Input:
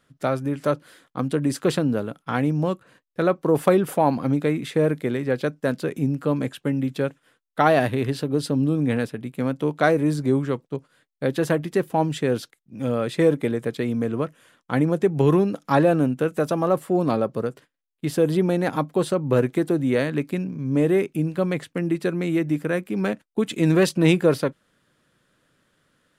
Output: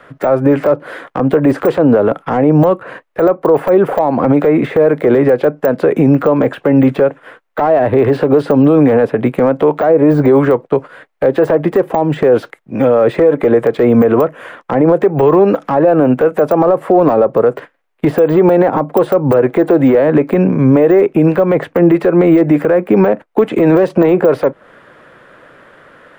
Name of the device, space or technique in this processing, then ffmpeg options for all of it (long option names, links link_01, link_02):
mastering chain: -filter_complex "[0:a]acrossover=split=500 2500:gain=0.0794 1 0.141[link_01][link_02][link_03];[link_01][link_02][link_03]amix=inputs=3:normalize=0,equalizer=frequency=2100:width_type=o:width=0.77:gain=2.5,acrossover=split=400|1000[link_04][link_05][link_06];[link_04]acompressor=threshold=-41dB:ratio=4[link_07];[link_05]acompressor=threshold=-32dB:ratio=4[link_08];[link_06]acompressor=threshold=-45dB:ratio=4[link_09];[link_07][link_08][link_09]amix=inputs=3:normalize=0,acompressor=threshold=-36dB:ratio=2.5,tiltshelf=frequency=710:gain=7.5,asoftclip=type=hard:threshold=-25.5dB,alimiter=level_in=31dB:limit=-1dB:release=50:level=0:latency=1,deesser=0.85"